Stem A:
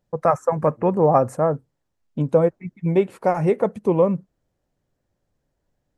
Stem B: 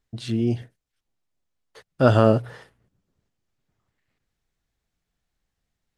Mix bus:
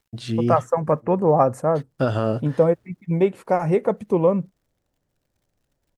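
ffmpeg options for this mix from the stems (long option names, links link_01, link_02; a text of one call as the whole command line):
ffmpeg -i stem1.wav -i stem2.wav -filter_complex "[0:a]adelay=250,volume=-0.5dB[link_01];[1:a]acrusher=bits=11:mix=0:aa=0.000001,alimiter=limit=-10dB:level=0:latency=1:release=469,volume=0.5dB[link_02];[link_01][link_02]amix=inputs=2:normalize=0" out.wav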